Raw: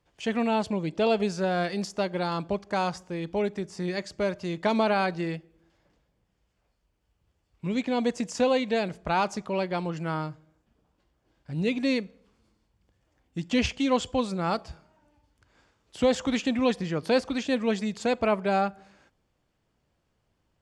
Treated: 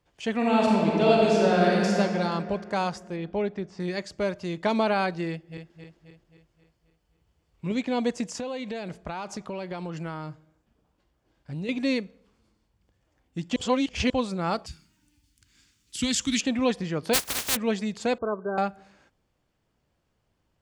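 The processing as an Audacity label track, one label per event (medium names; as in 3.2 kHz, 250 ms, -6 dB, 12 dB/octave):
0.360000	1.950000	reverb throw, RT60 2.8 s, DRR -4 dB
3.160000	3.800000	distance through air 150 m
5.310000	7.720000	backward echo that repeats 133 ms, feedback 72%, level -5 dB
8.360000	11.690000	compression 12:1, threshold -29 dBFS
13.560000	14.100000	reverse
14.660000	16.410000	FFT filter 290 Hz 0 dB, 590 Hz -23 dB, 2.2 kHz +3 dB, 9.1 kHz +14 dB
17.130000	17.550000	spectral contrast reduction exponent 0.1
18.180000	18.580000	rippled Chebyshev low-pass 1.6 kHz, ripple 9 dB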